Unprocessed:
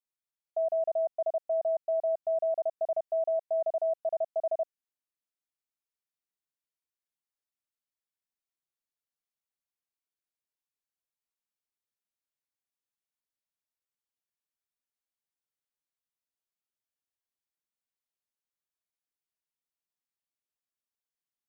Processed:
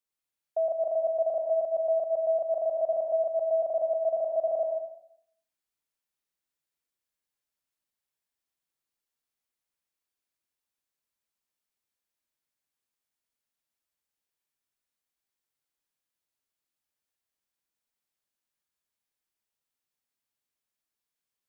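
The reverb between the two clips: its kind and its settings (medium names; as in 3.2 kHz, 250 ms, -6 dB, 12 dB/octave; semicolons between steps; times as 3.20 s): plate-style reverb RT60 0.7 s, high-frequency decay 0.95×, pre-delay 90 ms, DRR 0.5 dB; trim +2 dB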